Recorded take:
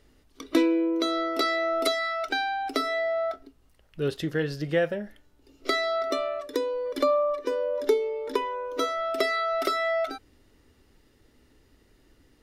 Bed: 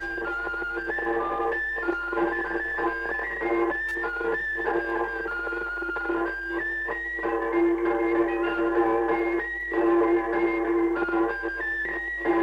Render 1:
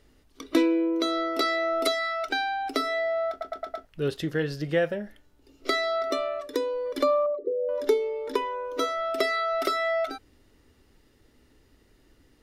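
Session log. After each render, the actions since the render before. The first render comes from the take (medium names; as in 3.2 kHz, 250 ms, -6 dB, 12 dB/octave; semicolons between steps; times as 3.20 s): 3.30 s: stutter in place 0.11 s, 5 plays; 7.26–7.69 s: resonances exaggerated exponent 3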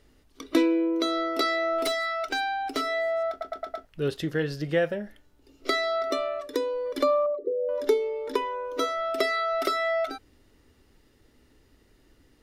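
1.78–3.23 s: hard clipper -22.5 dBFS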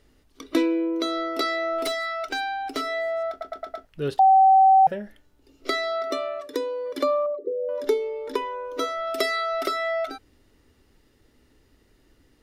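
4.19–4.87 s: bleep 768 Hz -11.5 dBFS; 5.92–7.84 s: high-pass 96 Hz; 9.07–9.61 s: treble shelf 4.4 kHz +8 dB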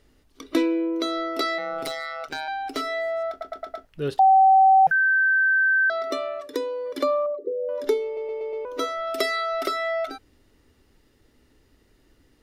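1.58–2.48 s: AM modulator 150 Hz, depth 70%; 4.91–5.90 s: bleep 1.55 kHz -16.5 dBFS; 8.05 s: stutter in place 0.12 s, 5 plays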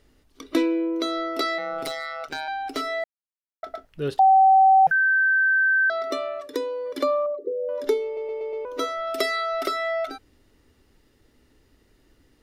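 3.04–3.63 s: mute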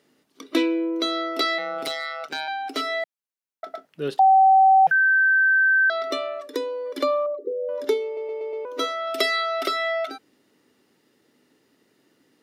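high-pass 160 Hz 24 dB/octave; dynamic bell 3.1 kHz, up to +8 dB, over -42 dBFS, Q 1.3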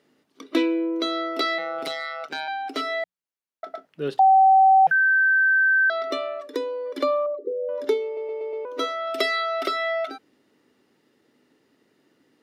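treble shelf 5 kHz -7.5 dB; hum notches 60/120/180 Hz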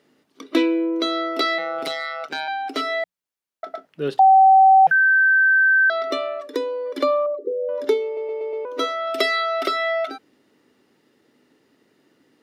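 trim +3 dB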